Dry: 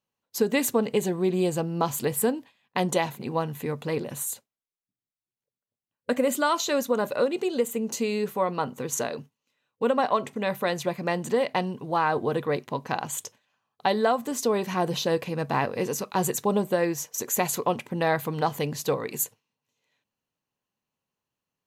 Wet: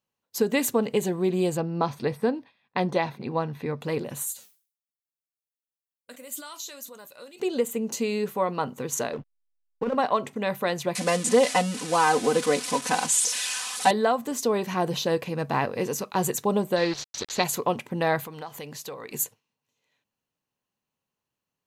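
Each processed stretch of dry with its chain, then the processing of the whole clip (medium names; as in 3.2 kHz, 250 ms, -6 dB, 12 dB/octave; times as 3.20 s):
1.57–3.81 s: de-esser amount 55% + Savitzky-Golay filter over 15 samples + band-stop 3 kHz, Q 7.6
4.32–7.40 s: flange 1.9 Hz, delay 6.2 ms, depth 2.4 ms, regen -74% + pre-emphasis filter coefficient 0.9 + decay stretcher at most 130 dB/s
9.13–9.95 s: compressor with a negative ratio -24 dBFS, ratio -0.5 + low-pass 2.8 kHz 24 dB/octave + hysteresis with a dead band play -35.5 dBFS
10.95–13.91 s: zero-crossing glitches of -19 dBFS + steep low-pass 10 kHz + comb 4 ms, depth 98%
16.76–17.44 s: small samples zeroed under -32.5 dBFS + resonant low-pass 4.2 kHz, resonance Q 4.7
18.24–19.12 s: bass shelf 390 Hz -9.5 dB + compression 3:1, threshold -36 dBFS
whole clip: none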